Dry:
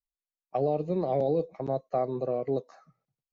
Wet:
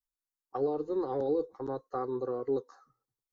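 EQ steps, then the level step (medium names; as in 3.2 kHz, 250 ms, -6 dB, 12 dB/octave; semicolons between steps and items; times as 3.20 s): dynamic bell 1.5 kHz, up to +8 dB, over -53 dBFS, Q 2.2; static phaser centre 640 Hz, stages 6; 0.0 dB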